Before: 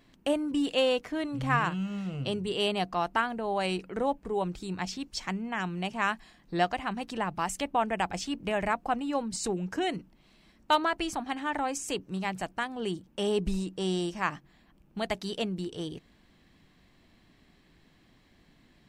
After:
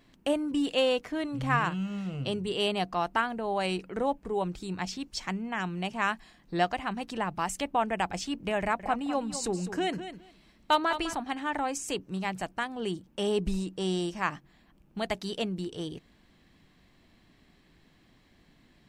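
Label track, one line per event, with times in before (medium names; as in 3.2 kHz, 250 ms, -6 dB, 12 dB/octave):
8.590000	11.150000	feedback delay 204 ms, feedback 16%, level -11 dB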